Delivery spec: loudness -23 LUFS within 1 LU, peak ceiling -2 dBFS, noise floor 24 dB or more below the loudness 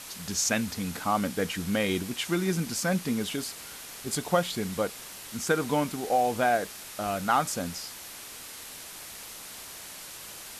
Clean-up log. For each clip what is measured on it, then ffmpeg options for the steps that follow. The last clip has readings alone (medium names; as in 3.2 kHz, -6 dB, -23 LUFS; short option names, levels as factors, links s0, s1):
noise floor -43 dBFS; noise floor target -53 dBFS; loudness -29.0 LUFS; peak level -10.5 dBFS; loudness target -23.0 LUFS
-> -af "afftdn=nr=10:nf=-43"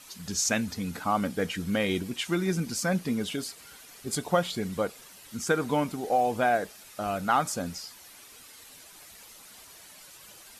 noise floor -51 dBFS; noise floor target -53 dBFS
-> -af "afftdn=nr=6:nf=-51"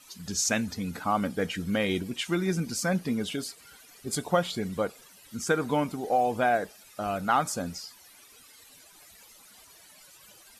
noise floor -54 dBFS; loudness -29.0 LUFS; peak level -11.0 dBFS; loudness target -23.0 LUFS
-> -af "volume=2"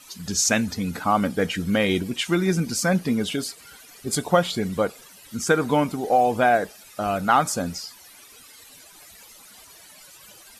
loudness -23.0 LUFS; peak level -5.0 dBFS; noise floor -48 dBFS